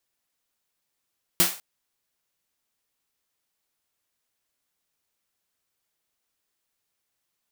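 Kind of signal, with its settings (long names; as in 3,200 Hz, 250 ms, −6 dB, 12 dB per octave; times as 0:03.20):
synth snare length 0.20 s, tones 180 Hz, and 340 Hz, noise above 500 Hz, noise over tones 9 dB, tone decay 0.21 s, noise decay 0.37 s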